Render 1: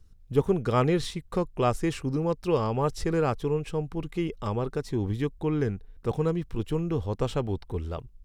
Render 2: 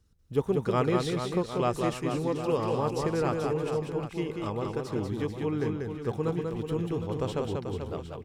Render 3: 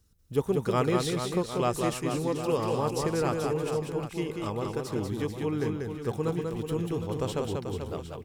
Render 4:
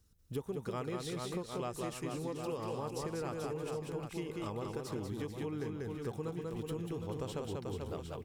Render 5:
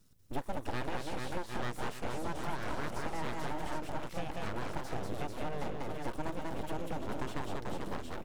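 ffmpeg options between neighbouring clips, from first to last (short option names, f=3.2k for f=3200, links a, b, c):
-filter_complex "[0:a]highpass=f=110:p=1,asplit=2[a][b];[b]aecho=0:1:190|437|758.1|1176|1718:0.631|0.398|0.251|0.158|0.1[c];[a][c]amix=inputs=2:normalize=0,volume=-3dB"
-af "highshelf=f=6.7k:g=11.5"
-af "acompressor=threshold=-33dB:ratio=5,volume=-3dB"
-filter_complex "[0:a]acrossover=split=2600[a][b];[b]acompressor=threshold=-55dB:ratio=4:attack=1:release=60[c];[a][c]amix=inputs=2:normalize=0,aeval=exprs='abs(val(0))':c=same,volume=5dB"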